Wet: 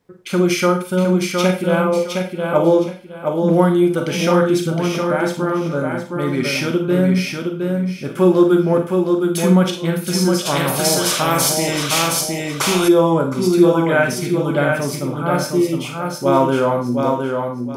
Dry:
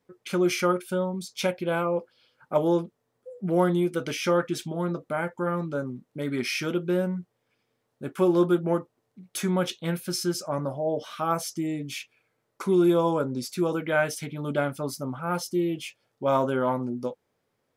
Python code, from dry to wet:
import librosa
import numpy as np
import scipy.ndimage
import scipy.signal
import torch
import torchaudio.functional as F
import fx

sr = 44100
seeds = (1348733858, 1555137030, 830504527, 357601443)

y = fx.low_shelf(x, sr, hz=140.0, db=6.0)
y = fx.echo_feedback(y, sr, ms=714, feedback_pct=25, wet_db=-4.5)
y = fx.rev_schroeder(y, sr, rt60_s=0.35, comb_ms=33, drr_db=4.5)
y = fx.spectral_comp(y, sr, ratio=2.0, at=(10.45, 12.87), fade=0.02)
y = F.gain(torch.from_numpy(y), 6.5).numpy()